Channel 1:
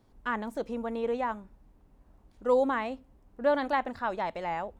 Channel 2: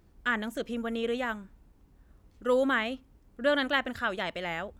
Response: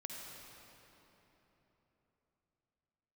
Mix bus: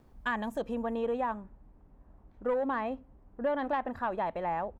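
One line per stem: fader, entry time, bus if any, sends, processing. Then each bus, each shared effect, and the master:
+2.0 dB, 0.00 s, no send, low-pass filter 1,700 Hz 12 dB per octave; soft clipping −18.5 dBFS, distortion −19 dB
−1.5 dB, 1.1 ms, no send, automatic ducking −18 dB, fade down 1.55 s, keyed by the first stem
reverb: not used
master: downward compressor, threshold −27 dBFS, peak gain reduction 6.5 dB

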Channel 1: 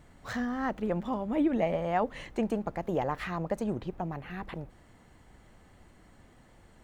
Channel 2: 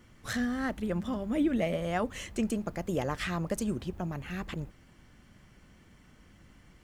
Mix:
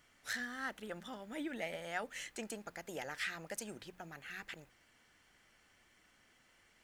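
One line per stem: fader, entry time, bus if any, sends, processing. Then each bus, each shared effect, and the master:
−12.5 dB, 0.00 s, no send, mains-hum notches 60/120/180 Hz
−3.5 dB, 0.00 s, no send, high-pass filter 1,300 Hz 24 dB per octave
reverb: not used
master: low-shelf EQ 200 Hz −10 dB

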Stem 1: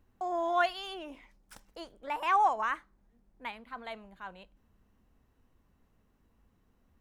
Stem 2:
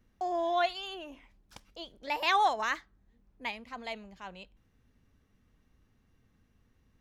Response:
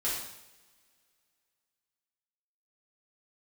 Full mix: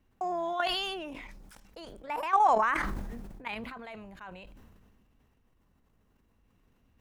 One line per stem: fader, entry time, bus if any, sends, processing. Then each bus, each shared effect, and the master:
+3.0 dB, 0.00 s, no send, output level in coarse steps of 12 dB
−8.5 dB, 0.00 s, no send, sub-octave generator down 1 octave, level 0 dB; brickwall limiter −25 dBFS, peak gain reduction 11 dB; parametric band 2,700 Hz +10 dB 0.62 octaves; automatic ducking −13 dB, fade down 0.70 s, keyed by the first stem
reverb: not used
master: level that may fall only so fast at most 28 dB per second

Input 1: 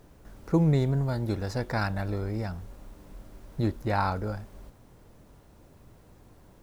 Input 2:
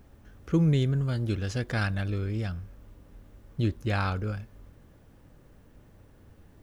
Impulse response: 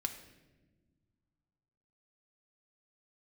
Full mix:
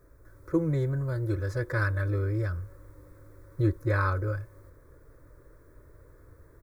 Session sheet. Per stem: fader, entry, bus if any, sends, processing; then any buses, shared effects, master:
−2.5 dB, 0.00 s, no send, no processing
+2.0 dB, 4.4 ms, polarity flipped, no send, bass and treble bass −2 dB, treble −6 dB; speech leveller 2 s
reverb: not used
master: parametric band 5,400 Hz −6 dB 1.5 octaves; phaser with its sweep stopped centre 780 Hz, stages 6

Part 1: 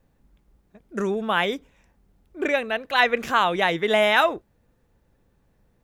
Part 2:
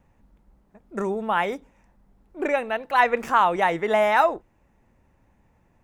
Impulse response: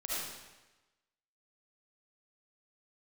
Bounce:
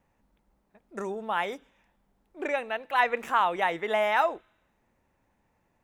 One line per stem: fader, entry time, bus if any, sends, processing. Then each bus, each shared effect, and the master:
−10.5 dB, 0.00 s, send −20 dB, high-pass filter 1,300 Hz; downward compressor 1.5 to 1, threshold −48 dBFS, peak gain reduction 11.5 dB
−5.0 dB, 0.00 s, no send, low-shelf EQ 210 Hz −9 dB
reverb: on, RT60 1.1 s, pre-delay 30 ms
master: no processing

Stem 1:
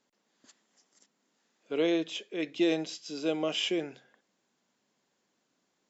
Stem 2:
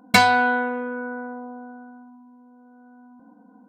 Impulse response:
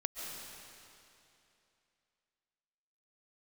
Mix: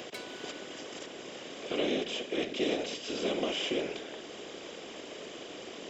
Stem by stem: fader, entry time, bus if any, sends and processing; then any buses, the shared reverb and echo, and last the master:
−4.5 dB, 0.00 s, no send, compressor on every frequency bin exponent 0.4; random phases in short frames; multiband upward and downward compressor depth 40%
−14.0 dB, 0.00 s, send −17 dB, guitar amp tone stack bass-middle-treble 5-5-5; automatic ducking −9 dB, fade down 0.20 s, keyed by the first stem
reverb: on, RT60 2.8 s, pre-delay 100 ms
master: low-shelf EQ 190 Hz −7 dB

